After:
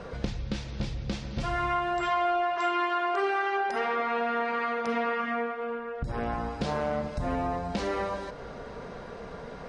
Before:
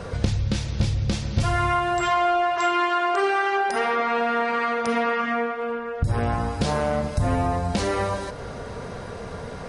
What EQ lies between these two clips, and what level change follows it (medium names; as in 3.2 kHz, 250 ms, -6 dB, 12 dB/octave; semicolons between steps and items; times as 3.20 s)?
distance through air 98 m; peaking EQ 96 Hz -13.5 dB 0.64 oct; -5.0 dB